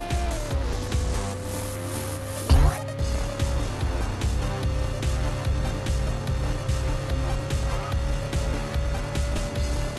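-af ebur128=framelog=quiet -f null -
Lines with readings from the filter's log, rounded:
Integrated loudness:
  I:         -27.6 LUFS
  Threshold: -37.5 LUFS
Loudness range:
  LRA:         1.6 LU
  Threshold: -47.3 LUFS
  LRA low:   -28.0 LUFS
  LRA high:  -26.3 LUFS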